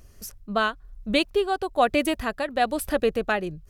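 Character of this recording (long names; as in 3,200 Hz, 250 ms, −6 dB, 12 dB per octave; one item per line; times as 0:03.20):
tremolo triangle 1.1 Hz, depth 60%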